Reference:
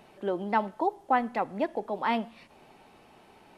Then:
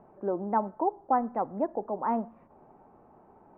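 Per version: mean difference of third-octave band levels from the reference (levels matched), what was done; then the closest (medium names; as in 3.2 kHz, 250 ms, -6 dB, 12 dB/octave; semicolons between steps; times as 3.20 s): 5.0 dB: low-pass 1.2 kHz 24 dB/octave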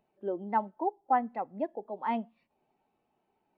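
9.5 dB: spectral contrast expander 1.5:1; trim -3 dB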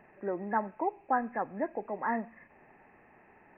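3.5 dB: knee-point frequency compression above 1.6 kHz 4:1; trim -4 dB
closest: third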